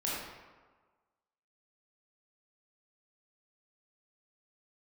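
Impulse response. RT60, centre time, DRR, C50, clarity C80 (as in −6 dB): 1.4 s, 90 ms, −7.0 dB, −2.0 dB, 1.0 dB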